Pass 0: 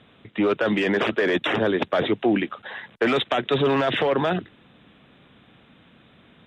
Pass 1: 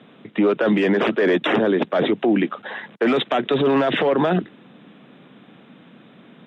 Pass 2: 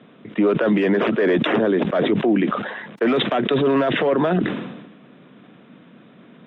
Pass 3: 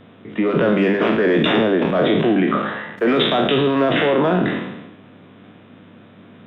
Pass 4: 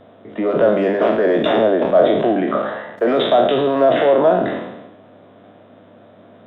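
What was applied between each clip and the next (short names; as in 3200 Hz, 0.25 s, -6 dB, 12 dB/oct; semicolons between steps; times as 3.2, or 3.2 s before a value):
HPF 170 Hz 24 dB/oct; tilt -2 dB/oct; limiter -15.5 dBFS, peak gain reduction 7 dB; gain +5 dB
LPF 2700 Hz 6 dB/oct; notch 820 Hz, Q 12; sustainer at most 50 dB/s
spectral trails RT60 0.80 s; buzz 100 Hz, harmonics 37, -50 dBFS -6 dB/oct; de-hum 101.8 Hz, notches 27
fifteen-band EQ 160 Hz -6 dB, 630 Hz +12 dB, 2500 Hz -6 dB; gain -2.5 dB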